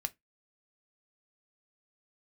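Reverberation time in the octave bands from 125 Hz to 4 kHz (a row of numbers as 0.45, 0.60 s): 0.25, 0.20, 0.15, 0.15, 0.15, 0.15 s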